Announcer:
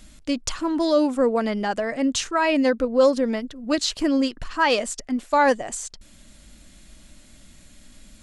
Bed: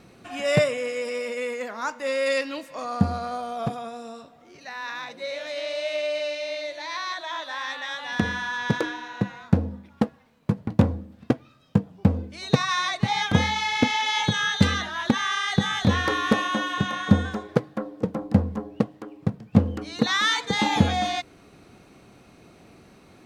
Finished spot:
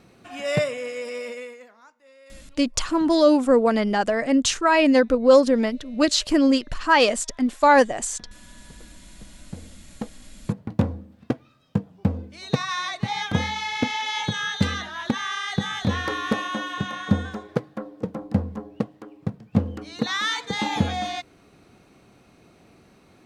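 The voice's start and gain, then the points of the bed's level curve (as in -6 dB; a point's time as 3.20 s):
2.30 s, +3.0 dB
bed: 1.30 s -2.5 dB
1.95 s -26.5 dB
9.05 s -26.5 dB
10.39 s -3 dB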